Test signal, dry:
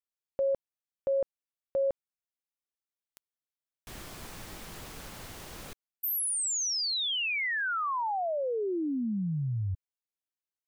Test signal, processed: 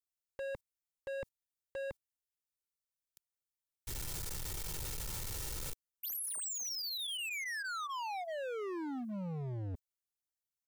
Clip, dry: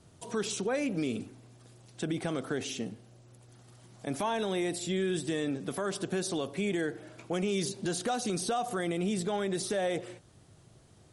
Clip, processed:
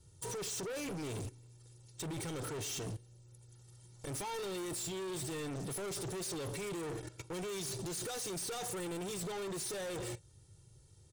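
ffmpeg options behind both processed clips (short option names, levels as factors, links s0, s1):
-af "agate=range=0.178:threshold=0.00447:ratio=16:release=51:detection=rms,bass=f=250:g=11,treble=f=4000:g=12,aecho=1:1:2.2:0.9,areverse,acompressor=threshold=0.0282:ratio=8:attack=1.4:release=62:knee=1:detection=peak,areverse,asoftclip=type=hard:threshold=0.0106,volume=1.12"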